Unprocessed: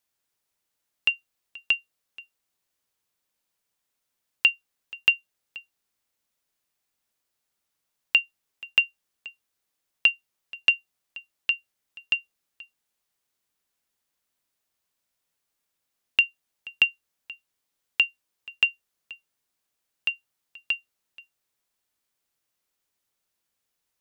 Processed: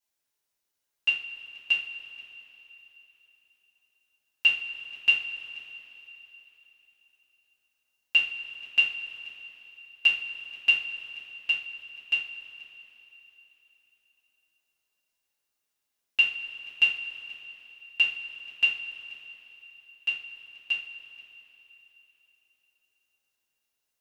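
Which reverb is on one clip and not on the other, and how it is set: two-slope reverb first 0.36 s, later 3.7 s, from -18 dB, DRR -9 dB; trim -12 dB

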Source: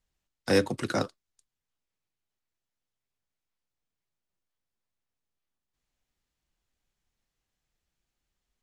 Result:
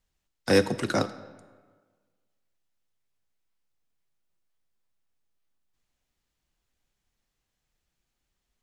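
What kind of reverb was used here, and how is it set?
algorithmic reverb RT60 1.5 s, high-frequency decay 0.7×, pre-delay 10 ms, DRR 14.5 dB; trim +2.5 dB

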